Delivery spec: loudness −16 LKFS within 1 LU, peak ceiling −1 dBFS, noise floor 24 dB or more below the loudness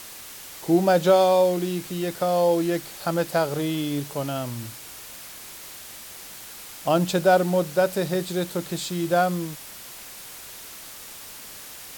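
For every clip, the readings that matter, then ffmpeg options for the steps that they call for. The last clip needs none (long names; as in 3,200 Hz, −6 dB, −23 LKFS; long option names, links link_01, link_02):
background noise floor −41 dBFS; target noise floor −48 dBFS; integrated loudness −23.5 LKFS; sample peak −7.5 dBFS; target loudness −16.0 LKFS
→ -af "afftdn=noise_reduction=7:noise_floor=-41"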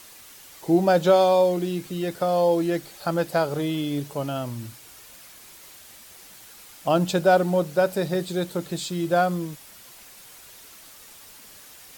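background noise floor −47 dBFS; target noise floor −48 dBFS
→ -af "afftdn=noise_reduction=6:noise_floor=-47"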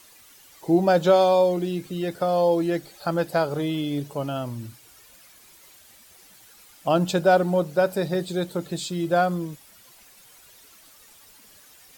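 background noise floor −52 dBFS; integrated loudness −23.5 LKFS; sample peak −7.5 dBFS; target loudness −16.0 LKFS
→ -af "volume=7.5dB,alimiter=limit=-1dB:level=0:latency=1"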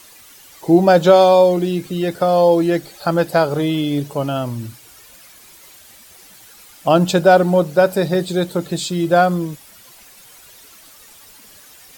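integrated loudness −16.0 LKFS; sample peak −1.0 dBFS; background noise floor −45 dBFS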